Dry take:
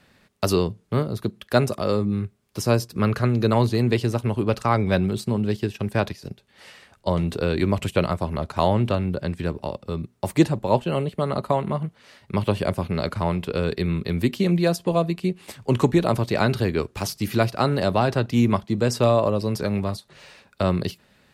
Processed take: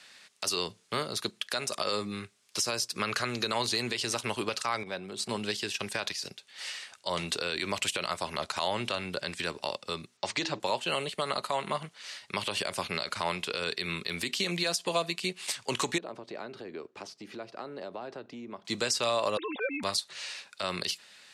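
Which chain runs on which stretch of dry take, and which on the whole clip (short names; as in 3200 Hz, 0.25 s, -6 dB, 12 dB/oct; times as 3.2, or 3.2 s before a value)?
4.83–5.29 HPF 200 Hz 6 dB/oct + tilt shelf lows +6.5 dB, about 1200 Hz + compressor 4:1, threshold -28 dBFS
10.17–10.6 LPF 5900 Hz 24 dB/oct + de-hum 107.5 Hz, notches 4
15.98–18.65 compressor 5:1, threshold -25 dBFS + band-pass 330 Hz, Q 1.1
19.37–19.83 sine-wave speech + comb 3.8 ms, depth 49% + compressor 2.5:1, threshold -26 dBFS
whole clip: weighting filter ITU-R 468; compressor, threshold -23 dBFS; limiter -17.5 dBFS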